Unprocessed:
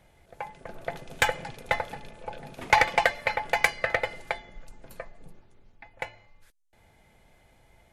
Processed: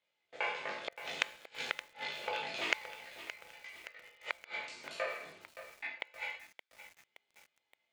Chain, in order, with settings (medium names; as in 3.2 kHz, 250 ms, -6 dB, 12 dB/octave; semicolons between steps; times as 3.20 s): spectral sustain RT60 0.79 s; flange 0.76 Hz, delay 9.3 ms, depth 5.8 ms, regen -67%; gate -51 dBFS, range -25 dB; chorus voices 4, 0.26 Hz, delay 19 ms, depth 1.9 ms; in parallel at -1.5 dB: compression 16:1, threshold -40 dBFS, peak gain reduction 23 dB; on the sum: tilt shelf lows -7.5 dB, about 1.3 kHz; inverted gate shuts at -25 dBFS, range -33 dB; cabinet simulation 280–6000 Hz, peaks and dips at 750 Hz -5 dB, 1.7 kHz -4 dB, 2.8 kHz +3 dB, 5.7 kHz -5 dB; bit-crushed delay 571 ms, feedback 55%, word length 9-bit, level -11.5 dB; trim +5.5 dB